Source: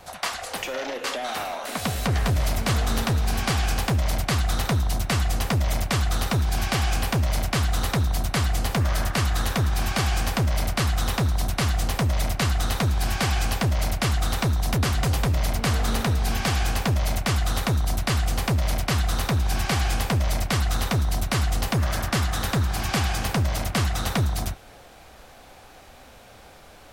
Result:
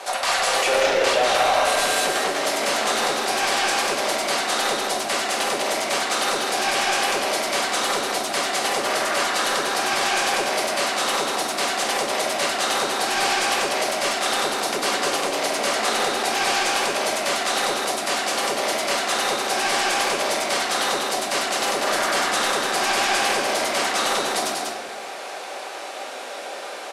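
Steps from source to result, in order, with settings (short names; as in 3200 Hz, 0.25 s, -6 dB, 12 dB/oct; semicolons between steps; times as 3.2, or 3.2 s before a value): in parallel at -2.5 dB: negative-ratio compressor -30 dBFS; on the sum: HPF 360 Hz 24 dB/oct; limiter -16.5 dBFS, peak gain reduction 8.5 dB; hard clip -23 dBFS, distortion -16 dB; LPF 11000 Hz 24 dB/oct; on a send: echo 0.192 s -4 dB; on the sum: shoebox room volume 590 m³, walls mixed, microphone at 1.2 m; gain +4 dB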